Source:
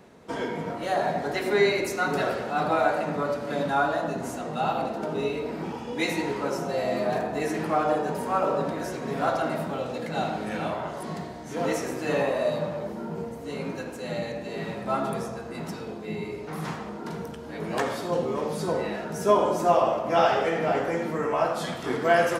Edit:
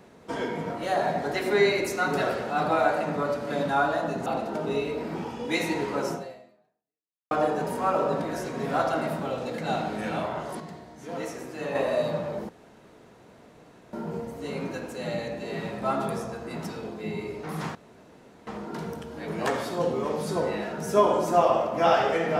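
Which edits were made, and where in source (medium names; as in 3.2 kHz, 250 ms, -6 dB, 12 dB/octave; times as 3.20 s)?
4.26–4.74 s: delete
6.61–7.79 s: fade out exponential
11.08–12.23 s: gain -7 dB
12.97 s: insert room tone 1.44 s
16.79 s: insert room tone 0.72 s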